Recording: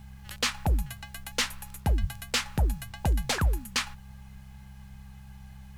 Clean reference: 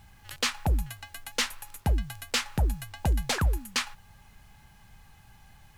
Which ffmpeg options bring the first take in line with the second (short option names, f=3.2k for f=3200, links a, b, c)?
-filter_complex "[0:a]adeclick=t=4,bandreject=f=66:t=h:w=4,bandreject=f=132:t=h:w=4,bandreject=f=198:t=h:w=4,asplit=3[a][b][c];[a]afade=t=out:st=2:d=0.02[d];[b]highpass=f=140:w=0.5412,highpass=f=140:w=1.3066,afade=t=in:st=2:d=0.02,afade=t=out:st=2.12:d=0.02[e];[c]afade=t=in:st=2.12:d=0.02[f];[d][e][f]amix=inputs=3:normalize=0"